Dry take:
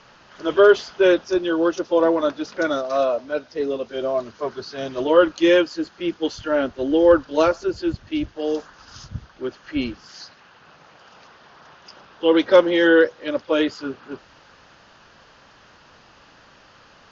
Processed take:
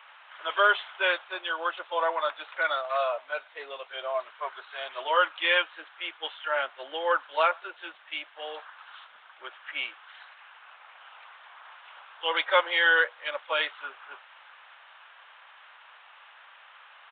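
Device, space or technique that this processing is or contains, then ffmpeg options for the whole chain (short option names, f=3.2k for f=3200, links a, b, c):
musical greeting card: -af "aresample=8000,aresample=44100,highpass=f=790:w=0.5412,highpass=f=790:w=1.3066,equalizer=f=2.2k:t=o:w=0.25:g=4.5"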